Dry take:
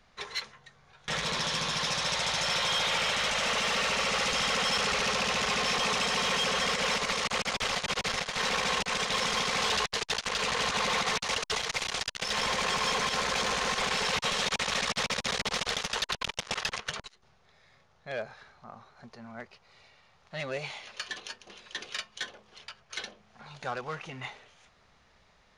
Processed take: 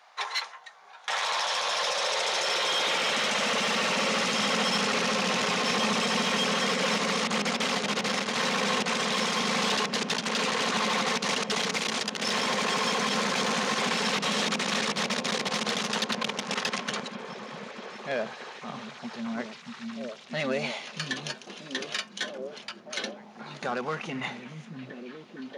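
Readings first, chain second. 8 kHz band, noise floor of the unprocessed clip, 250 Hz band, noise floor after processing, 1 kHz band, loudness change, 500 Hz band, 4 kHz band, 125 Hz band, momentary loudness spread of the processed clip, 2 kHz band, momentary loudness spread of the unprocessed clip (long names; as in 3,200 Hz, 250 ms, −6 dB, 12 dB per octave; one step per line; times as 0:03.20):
+1.0 dB, −64 dBFS, +9.5 dB, −49 dBFS, +2.5 dB, +1.5 dB, +4.5 dB, +1.5 dB, +3.0 dB, 14 LU, +1.5 dB, 14 LU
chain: high-pass filter sweep 800 Hz → 220 Hz, 0:01.29–0:03.39
brickwall limiter −25 dBFS, peak gain reduction 8 dB
echo through a band-pass that steps 632 ms, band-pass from 170 Hz, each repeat 0.7 octaves, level −0.5 dB
level +5.5 dB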